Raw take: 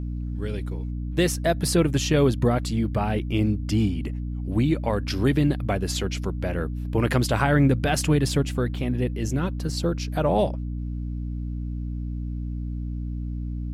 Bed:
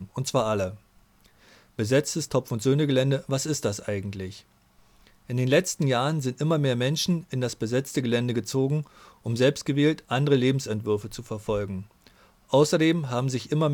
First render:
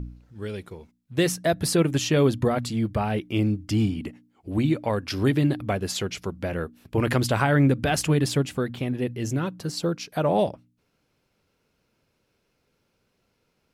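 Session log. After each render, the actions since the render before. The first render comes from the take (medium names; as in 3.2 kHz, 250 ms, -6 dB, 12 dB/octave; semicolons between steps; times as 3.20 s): de-hum 60 Hz, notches 5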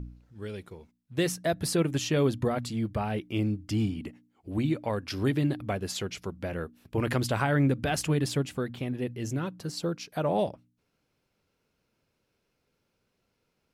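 trim -5 dB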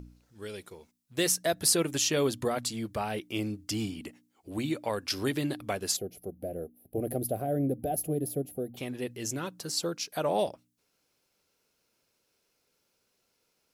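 5.96–8.77 s: time-frequency box 780–10000 Hz -24 dB; tone controls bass -9 dB, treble +10 dB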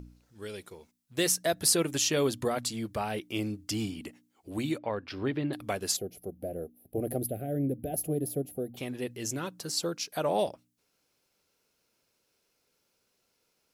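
4.78–5.53 s: distance through air 350 m; 7.26–7.94 s: static phaser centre 2.4 kHz, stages 4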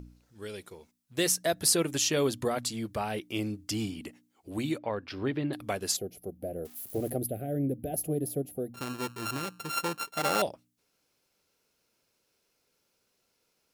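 6.65–7.10 s: zero-crossing glitches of -37.5 dBFS; 8.74–10.42 s: sorted samples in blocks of 32 samples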